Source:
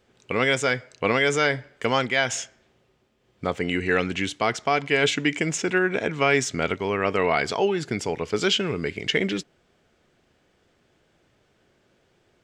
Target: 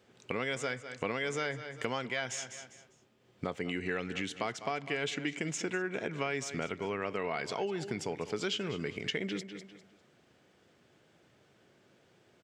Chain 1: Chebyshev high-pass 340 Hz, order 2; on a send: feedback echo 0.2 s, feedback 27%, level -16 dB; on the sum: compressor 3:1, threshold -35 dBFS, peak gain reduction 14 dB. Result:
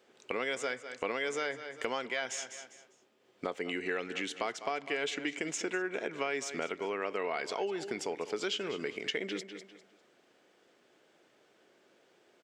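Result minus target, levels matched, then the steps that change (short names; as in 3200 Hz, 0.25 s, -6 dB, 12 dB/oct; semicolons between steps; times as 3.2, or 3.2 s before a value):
125 Hz band -11.5 dB
change: Chebyshev high-pass 120 Hz, order 2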